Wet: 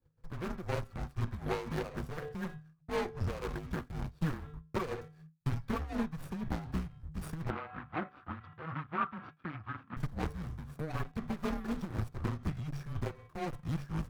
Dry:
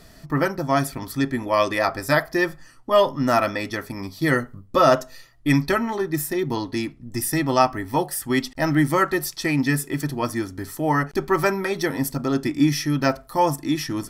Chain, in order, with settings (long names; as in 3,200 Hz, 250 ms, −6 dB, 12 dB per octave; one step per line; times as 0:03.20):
running median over 41 samples
hum removal 301.6 Hz, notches 13
downward expander −37 dBFS
parametric band 1,300 Hz +5.5 dB 0.85 octaves
downward compressor 6 to 1, threshold −26 dBFS, peak gain reduction 11.5 dB
amplitude tremolo 4 Hz, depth 75%
frequency shifter −160 Hz
asymmetric clip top −37.5 dBFS
0:07.50–0:09.97: loudspeaker in its box 140–3,000 Hz, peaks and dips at 140 Hz −8 dB, 230 Hz −4 dB, 430 Hz −10 dB, 620 Hz −5 dB, 1,300 Hz +10 dB